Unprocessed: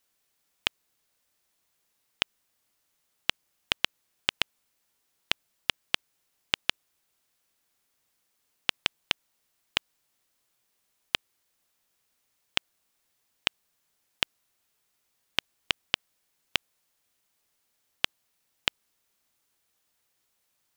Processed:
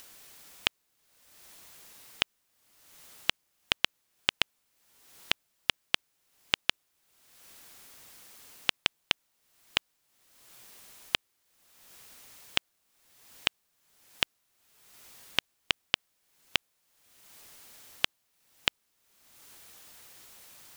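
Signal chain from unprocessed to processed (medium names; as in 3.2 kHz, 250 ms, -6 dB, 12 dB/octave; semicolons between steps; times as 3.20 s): upward compressor, threshold -34 dBFS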